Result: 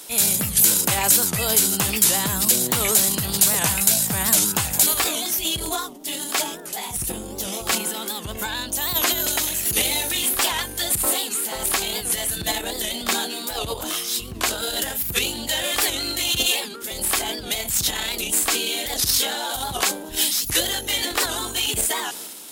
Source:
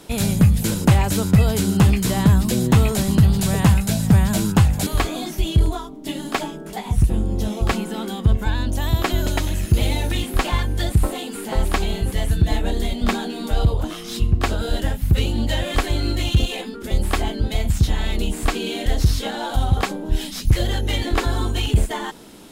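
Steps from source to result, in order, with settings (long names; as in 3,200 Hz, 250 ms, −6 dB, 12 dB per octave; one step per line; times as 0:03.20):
low-shelf EQ 250 Hz −4 dB
transient designer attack −3 dB, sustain +6 dB
RIAA equalisation recording
wow of a warped record 78 rpm, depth 160 cents
level −1 dB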